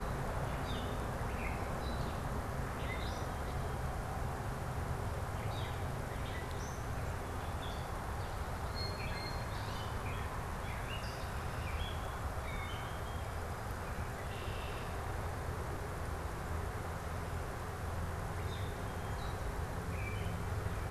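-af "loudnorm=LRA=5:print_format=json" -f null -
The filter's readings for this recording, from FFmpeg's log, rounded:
"input_i" : "-40.6",
"input_tp" : "-25.5",
"input_lra" : "1.6",
"input_thresh" : "-50.6",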